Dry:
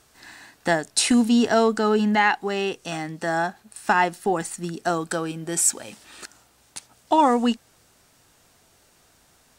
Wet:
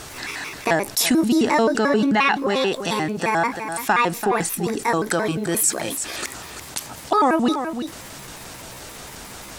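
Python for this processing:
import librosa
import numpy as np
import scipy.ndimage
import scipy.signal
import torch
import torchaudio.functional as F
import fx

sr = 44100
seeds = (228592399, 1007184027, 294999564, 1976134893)

y = fx.pitch_trill(x, sr, semitones=5.0, every_ms=88)
y = fx.high_shelf(y, sr, hz=10000.0, db=-5.0)
y = y + 10.0 ** (-17.0 / 20.0) * np.pad(y, (int(338 * sr / 1000.0), 0))[:len(y)]
y = fx.env_flatten(y, sr, amount_pct=50)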